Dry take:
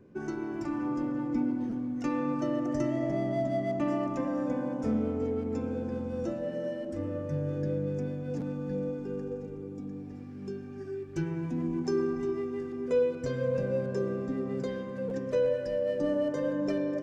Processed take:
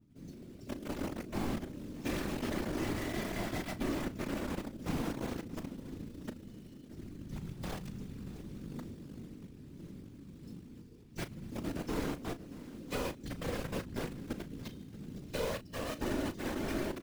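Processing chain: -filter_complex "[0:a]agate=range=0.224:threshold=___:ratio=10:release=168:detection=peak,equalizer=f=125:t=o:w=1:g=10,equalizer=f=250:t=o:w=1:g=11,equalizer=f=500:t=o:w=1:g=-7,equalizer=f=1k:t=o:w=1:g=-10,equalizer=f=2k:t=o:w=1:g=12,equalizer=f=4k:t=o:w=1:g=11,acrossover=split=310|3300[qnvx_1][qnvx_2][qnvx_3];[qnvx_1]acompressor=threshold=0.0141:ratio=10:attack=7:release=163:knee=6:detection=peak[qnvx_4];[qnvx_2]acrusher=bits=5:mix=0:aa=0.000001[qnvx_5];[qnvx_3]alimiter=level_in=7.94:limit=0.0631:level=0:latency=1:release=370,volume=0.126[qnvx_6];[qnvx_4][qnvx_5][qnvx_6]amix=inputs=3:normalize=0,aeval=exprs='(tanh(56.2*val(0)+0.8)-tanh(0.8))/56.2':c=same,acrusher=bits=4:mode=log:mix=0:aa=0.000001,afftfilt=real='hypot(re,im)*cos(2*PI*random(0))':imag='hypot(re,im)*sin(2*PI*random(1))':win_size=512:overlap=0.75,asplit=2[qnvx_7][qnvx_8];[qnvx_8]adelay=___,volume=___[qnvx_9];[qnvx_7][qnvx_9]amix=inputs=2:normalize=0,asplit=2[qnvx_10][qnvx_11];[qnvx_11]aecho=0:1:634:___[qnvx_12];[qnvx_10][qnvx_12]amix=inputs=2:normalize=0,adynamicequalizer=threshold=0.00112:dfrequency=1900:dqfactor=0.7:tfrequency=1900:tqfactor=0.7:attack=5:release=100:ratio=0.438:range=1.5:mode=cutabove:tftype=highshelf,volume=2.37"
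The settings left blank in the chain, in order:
0.0355, 36, 0.237, 0.112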